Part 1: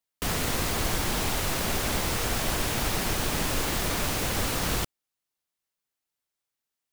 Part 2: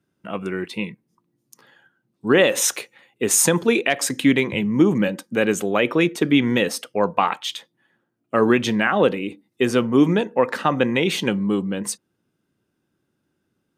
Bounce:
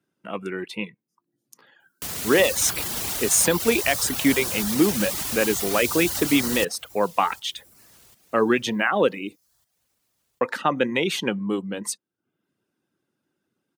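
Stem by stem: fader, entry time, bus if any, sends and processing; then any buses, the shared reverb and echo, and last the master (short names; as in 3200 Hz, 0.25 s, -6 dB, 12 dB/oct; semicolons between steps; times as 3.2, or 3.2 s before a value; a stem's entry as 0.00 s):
0.0 dB, 1.80 s, no send, echo send -19 dB, high shelf 4100 Hz +12 dB; limiter -21.5 dBFS, peak gain reduction 11.5 dB; AGC gain up to 4 dB
-1.5 dB, 0.00 s, muted 9.36–10.41, no send, no echo send, HPF 200 Hz 6 dB/oct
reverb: off
echo: feedback echo 0.749 s, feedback 47%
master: HPF 64 Hz; reverb removal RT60 0.5 s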